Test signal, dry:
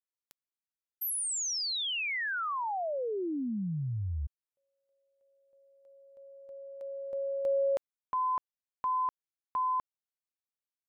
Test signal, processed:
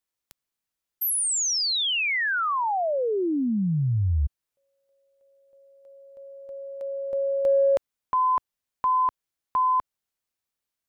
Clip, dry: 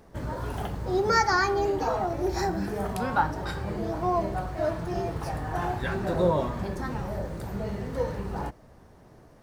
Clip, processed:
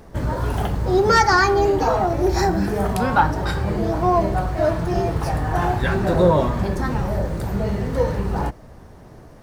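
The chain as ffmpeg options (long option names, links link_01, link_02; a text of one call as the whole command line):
ffmpeg -i in.wav -filter_complex "[0:a]lowshelf=frequency=110:gain=4.5,asplit=2[link_01][link_02];[link_02]aeval=exprs='0.422*sin(PI/2*1.78*val(0)/0.422)':channel_layout=same,volume=-5dB[link_03];[link_01][link_03]amix=inputs=2:normalize=0" out.wav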